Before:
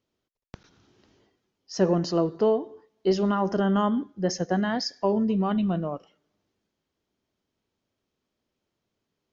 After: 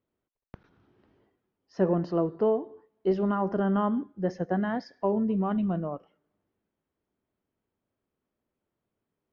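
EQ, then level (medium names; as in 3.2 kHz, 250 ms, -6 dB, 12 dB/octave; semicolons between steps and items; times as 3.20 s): low-pass 1.9 kHz 12 dB/octave; -2.5 dB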